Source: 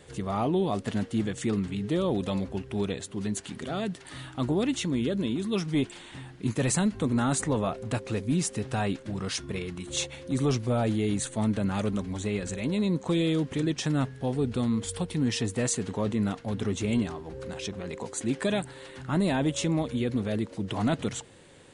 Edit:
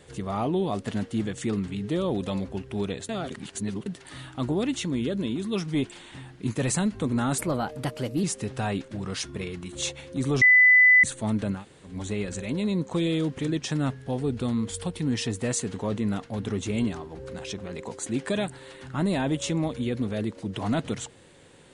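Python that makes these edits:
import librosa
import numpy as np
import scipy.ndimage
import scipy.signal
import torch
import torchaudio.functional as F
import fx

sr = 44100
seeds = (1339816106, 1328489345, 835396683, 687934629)

y = fx.edit(x, sr, fx.reverse_span(start_s=3.09, length_s=0.77),
    fx.speed_span(start_s=7.38, length_s=1.0, speed=1.17),
    fx.bleep(start_s=10.56, length_s=0.62, hz=2000.0, db=-12.5),
    fx.room_tone_fill(start_s=11.72, length_s=0.33, crossfade_s=0.16), tone=tone)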